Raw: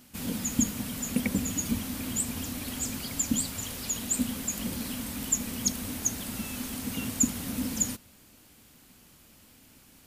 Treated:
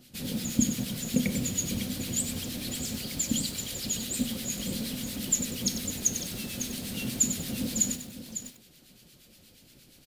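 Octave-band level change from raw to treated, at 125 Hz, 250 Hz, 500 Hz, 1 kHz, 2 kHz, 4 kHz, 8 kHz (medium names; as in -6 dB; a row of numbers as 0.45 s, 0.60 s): +1.5 dB, 0.0 dB, +2.0 dB, -5.5 dB, -1.0 dB, +4.0 dB, +0.5 dB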